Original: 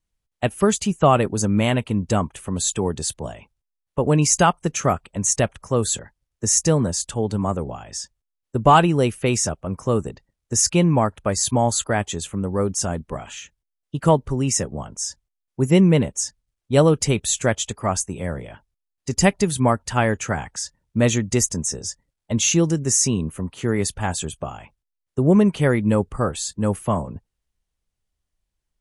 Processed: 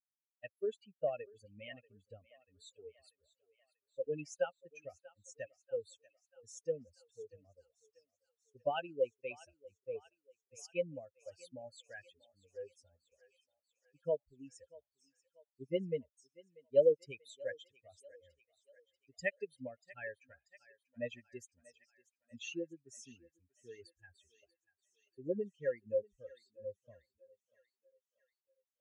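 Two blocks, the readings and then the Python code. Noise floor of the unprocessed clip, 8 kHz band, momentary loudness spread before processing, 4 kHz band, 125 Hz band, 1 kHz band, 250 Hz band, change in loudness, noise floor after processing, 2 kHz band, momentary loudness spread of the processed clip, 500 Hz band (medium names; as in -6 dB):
-81 dBFS, -36.5 dB, 13 LU, -27.0 dB, -35.0 dB, -28.5 dB, -30.0 dB, -19.0 dB, under -85 dBFS, -19.5 dB, 21 LU, -15.5 dB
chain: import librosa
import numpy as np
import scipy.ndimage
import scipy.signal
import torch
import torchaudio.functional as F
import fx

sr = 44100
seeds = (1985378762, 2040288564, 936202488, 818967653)

y = fx.bin_expand(x, sr, power=3.0)
y = fx.vowel_filter(y, sr, vowel='e')
y = fx.echo_thinned(y, sr, ms=638, feedback_pct=61, hz=670.0, wet_db=-19)
y = F.gain(torch.from_numpy(y), -1.0).numpy()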